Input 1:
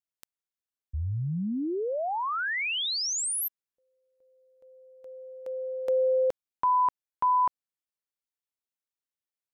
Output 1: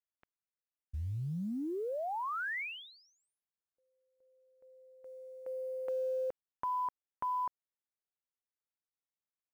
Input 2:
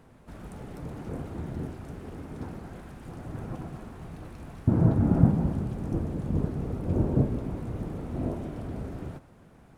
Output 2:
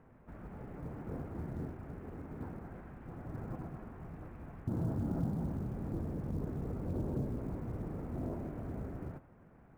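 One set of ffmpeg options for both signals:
ffmpeg -i in.wav -af "lowpass=frequency=2200:width=0.5412,lowpass=frequency=2200:width=1.3066,acompressor=threshold=-30dB:ratio=2.5:attack=5:release=33:knee=1:detection=rms,acrusher=bits=9:mode=log:mix=0:aa=0.000001,volume=-5.5dB" out.wav

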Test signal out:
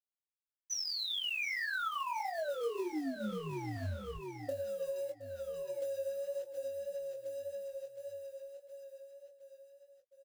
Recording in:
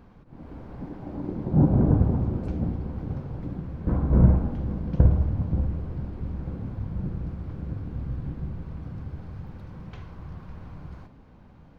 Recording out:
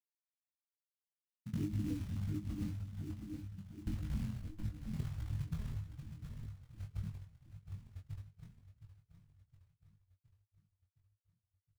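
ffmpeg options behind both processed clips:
ffmpeg -i in.wav -filter_complex "[0:a]afftfilt=real='re*gte(hypot(re,im),0.398)':imag='im*gte(hypot(re,im),0.398)':win_size=1024:overlap=0.75,alimiter=limit=-15.5dB:level=0:latency=1:release=450,lowshelf=frequency=260:width_type=q:width=1.5:gain=-7,flanger=delay=7.2:depth=3.5:regen=34:speed=0.18:shape=sinusoidal,acrusher=bits=5:mode=log:mix=0:aa=0.000001,asplit=2[link_01][link_02];[link_02]aecho=0:1:716|1432|2148|2864|3580|4296:0.251|0.136|0.0732|0.0396|0.0214|0.0115[link_03];[link_01][link_03]amix=inputs=2:normalize=0,flanger=delay=19.5:depth=4.5:speed=1.7,acompressor=threshold=-43dB:ratio=5,asplit=2[link_04][link_05];[link_05]adelay=19,volume=-8.5dB[link_06];[link_04][link_06]amix=inputs=2:normalize=0,volume=8dB" out.wav

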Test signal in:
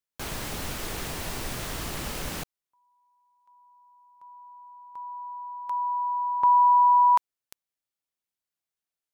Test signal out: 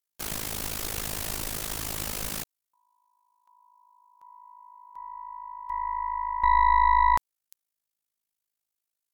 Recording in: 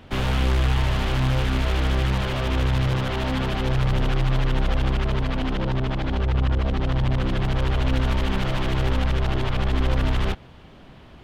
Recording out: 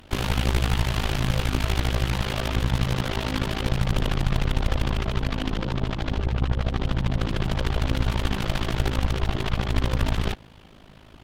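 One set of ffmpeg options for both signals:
ffmpeg -i in.wav -af "aemphasis=mode=production:type=cd,tremolo=f=53:d=0.857,aeval=exprs='0.282*(cos(1*acos(clip(val(0)/0.282,-1,1)))-cos(1*PI/2))+0.0398*(cos(4*acos(clip(val(0)/0.282,-1,1)))-cos(4*PI/2))':channel_layout=same,volume=1dB" out.wav

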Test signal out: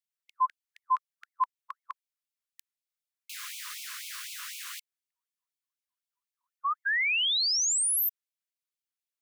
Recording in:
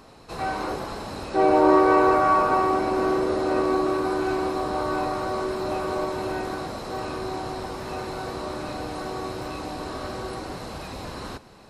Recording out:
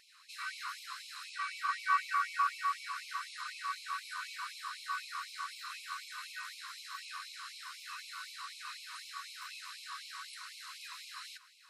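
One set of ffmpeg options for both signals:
ffmpeg -i in.wav -af "afftfilt=real='re*gte(b*sr/1024,960*pow(2200/960,0.5+0.5*sin(2*PI*4*pts/sr)))':imag='im*gte(b*sr/1024,960*pow(2200/960,0.5+0.5*sin(2*PI*4*pts/sr)))':win_size=1024:overlap=0.75,volume=-4dB" out.wav

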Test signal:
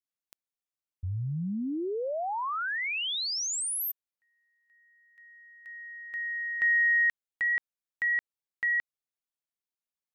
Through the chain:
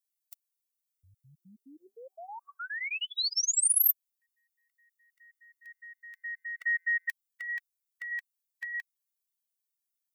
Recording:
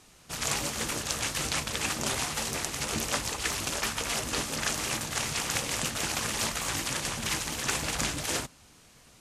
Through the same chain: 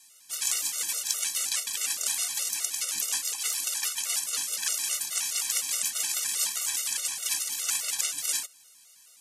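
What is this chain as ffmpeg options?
ffmpeg -i in.wav -af "aderivative,afftfilt=real='re*gt(sin(2*PI*4.8*pts/sr)*(1-2*mod(floor(b*sr/1024/380),2)),0)':imag='im*gt(sin(2*PI*4.8*pts/sr)*(1-2*mod(floor(b*sr/1024/380),2)),0)':win_size=1024:overlap=0.75,volume=8.5dB" out.wav

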